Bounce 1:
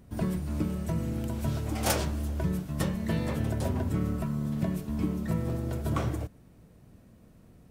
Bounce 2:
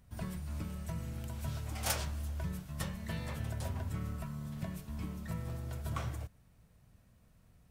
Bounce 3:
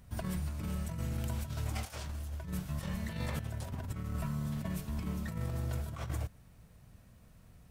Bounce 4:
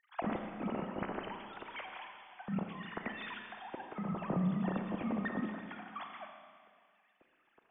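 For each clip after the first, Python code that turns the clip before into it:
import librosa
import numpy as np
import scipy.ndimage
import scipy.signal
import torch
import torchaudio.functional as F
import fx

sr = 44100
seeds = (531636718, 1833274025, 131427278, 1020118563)

y1 = fx.peak_eq(x, sr, hz=320.0, db=-13.0, octaves=1.8)
y1 = y1 * librosa.db_to_amplitude(-4.5)
y2 = fx.over_compress(y1, sr, threshold_db=-40.0, ratio=-0.5)
y2 = y2 * librosa.db_to_amplitude(4.0)
y3 = fx.sine_speech(y2, sr)
y3 = fx.rev_schroeder(y3, sr, rt60_s=2.0, comb_ms=29, drr_db=4.0)
y3 = y3 * librosa.db_to_amplitude(-4.0)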